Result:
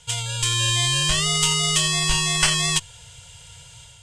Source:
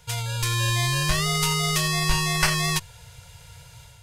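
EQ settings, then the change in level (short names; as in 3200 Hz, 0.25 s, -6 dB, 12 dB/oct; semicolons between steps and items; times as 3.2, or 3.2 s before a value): synth low-pass 8000 Hz, resonance Q 3.7; bell 3100 Hz +12.5 dB 0.31 oct; -1.5 dB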